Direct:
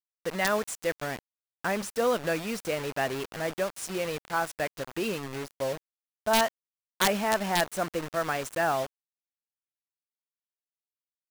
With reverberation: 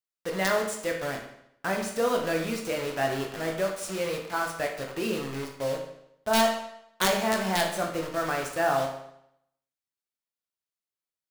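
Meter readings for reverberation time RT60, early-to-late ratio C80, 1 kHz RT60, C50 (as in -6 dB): 0.75 s, 9.0 dB, 0.75 s, 6.0 dB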